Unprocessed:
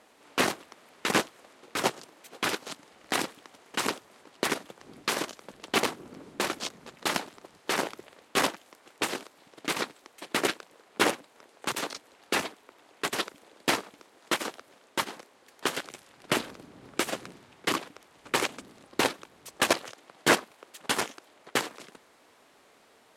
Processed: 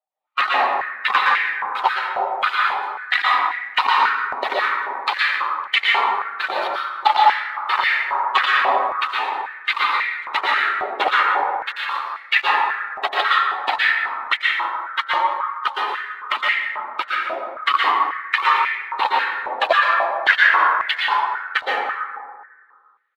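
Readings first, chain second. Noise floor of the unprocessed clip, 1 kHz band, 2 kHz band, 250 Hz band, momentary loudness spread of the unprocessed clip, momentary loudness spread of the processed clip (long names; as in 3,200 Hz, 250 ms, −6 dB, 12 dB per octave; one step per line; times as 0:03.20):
−60 dBFS, +16.5 dB, +14.5 dB, −9.5 dB, 18 LU, 8 LU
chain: spectral dynamics exaggerated over time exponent 2
camcorder AGC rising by 6.7 dB per second
Butterworth low-pass 4,100 Hz 48 dB per octave
harmonic and percussive parts rebalanced percussive −5 dB
leveller curve on the samples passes 1
on a send: single-tap delay 179 ms −17.5 dB
on the sum: dense smooth reverb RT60 1.9 s, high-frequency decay 0.3×, pre-delay 105 ms, DRR −5.5 dB
boost into a limiter +16.5 dB
high-pass on a step sequencer 3.7 Hz 700–2,000 Hz
level −9 dB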